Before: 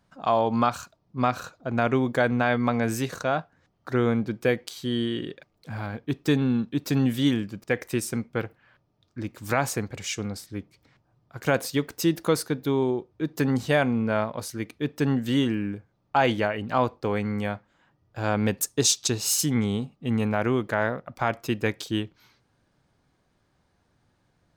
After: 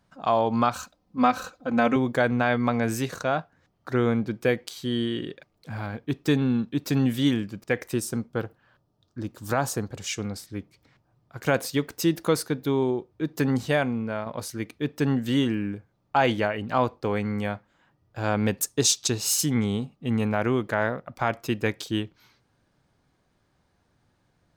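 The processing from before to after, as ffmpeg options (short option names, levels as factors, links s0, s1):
-filter_complex "[0:a]asettb=1/sr,asplit=3[s0][s1][s2];[s0]atrim=end=0.754[s3];[s1]atrim=start=0.75:end=1.96,asetpts=PTS-STARTPTS,afade=t=in:d=0.004:c=qsin,afade=t=out:st=1.206:d=0.004:c=qsin,aecho=1:1:3.9:0.86,atrim=end_sample=53361[s4];[s2]atrim=start=1.956[s5];[s3][s4]acrossfade=d=0.004:c1=hsin:c2=qsin[s6];[s6][s5]acrossfade=d=0.004:c1=qsin:c2=hsin,asettb=1/sr,asplit=3[s7][s8][s9];[s7]atrim=end=7.934[s10];[s8]atrim=start=7.93:end=10.07,asetpts=PTS-STARTPTS,afade=t=in:d=0.004:c=qsin,afade=t=out:st=2.136:d=0.004:c=qsin,equalizer=f=2200:w=2.7:g=-10.5[s11];[s9]atrim=start=10.066[s12];[s10][s11]acrossfade=d=0.004:c1=hsin:c2=qsin[s13];[s13][s12]acrossfade=d=0.004:c1=qsin:c2=hsin,asplit=2[s14][s15];[s14]atrim=end=14.26,asetpts=PTS-STARTPTS,afade=t=out:st=13.56:d=0.7:silence=0.421697[s16];[s15]atrim=start=14.26,asetpts=PTS-STARTPTS,afade=t=in:d=0.004:c=hsin:silence=0.421697[s17];[s16][s17]concat=n=2:v=0:a=1"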